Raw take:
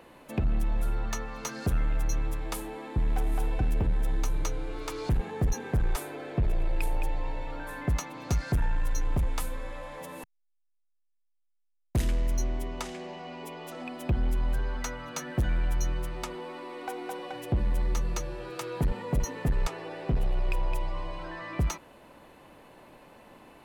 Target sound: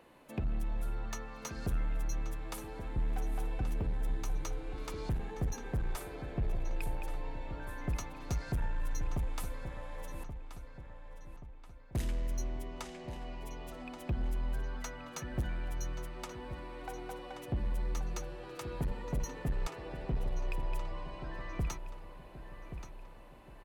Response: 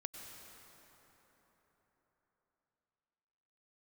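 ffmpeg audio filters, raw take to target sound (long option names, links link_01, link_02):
-filter_complex "[0:a]asplit=2[link_01][link_02];[link_02]adelay=1129,lowpass=frequency=5000:poles=1,volume=-10dB,asplit=2[link_03][link_04];[link_04]adelay=1129,lowpass=frequency=5000:poles=1,volume=0.5,asplit=2[link_05][link_06];[link_06]adelay=1129,lowpass=frequency=5000:poles=1,volume=0.5,asplit=2[link_07][link_08];[link_08]adelay=1129,lowpass=frequency=5000:poles=1,volume=0.5,asplit=2[link_09][link_10];[link_10]adelay=1129,lowpass=frequency=5000:poles=1,volume=0.5[link_11];[link_01][link_03][link_05][link_07][link_09][link_11]amix=inputs=6:normalize=0,volume=-7.5dB"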